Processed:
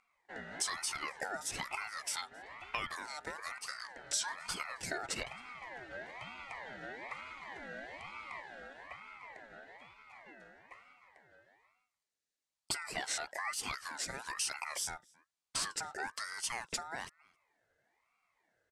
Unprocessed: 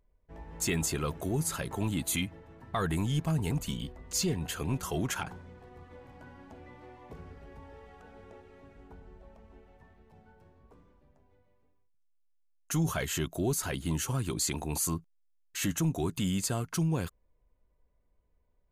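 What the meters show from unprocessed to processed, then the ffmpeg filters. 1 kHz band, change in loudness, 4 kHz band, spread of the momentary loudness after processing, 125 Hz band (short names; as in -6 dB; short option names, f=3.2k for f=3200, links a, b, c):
-1.0 dB, -8.0 dB, -1.5 dB, 15 LU, -26.0 dB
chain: -filter_complex "[0:a]acompressor=threshold=-40dB:ratio=6,highpass=430,equalizer=f=1.2k:t=q:w=4:g=-10,equalizer=f=2k:t=q:w=4:g=-10,equalizer=f=3.9k:t=q:w=4:g=-4,lowpass=f=8.1k:w=0.5412,lowpass=f=8.1k:w=1.3066,asplit=2[a][b];[b]adelay=268.2,volume=-25dB,highshelf=f=4k:g=-6.04[c];[a][c]amix=inputs=2:normalize=0,aeval=exprs='val(0)*sin(2*PI*1400*n/s+1400*0.25/1.1*sin(2*PI*1.1*n/s))':c=same,volume=12dB"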